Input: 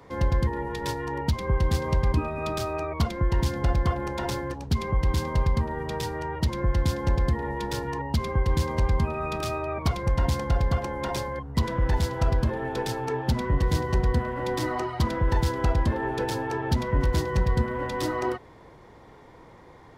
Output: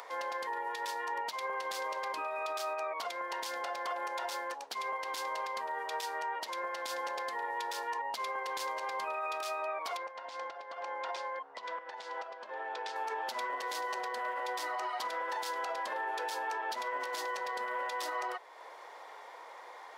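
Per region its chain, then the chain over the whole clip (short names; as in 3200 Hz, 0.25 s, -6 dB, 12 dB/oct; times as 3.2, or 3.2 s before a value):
9.97–12.96 compressor 12:1, threshold -29 dBFS + air absorption 120 m
whole clip: HPF 600 Hz 24 dB/oct; limiter -28 dBFS; upward compressor, threshold -42 dBFS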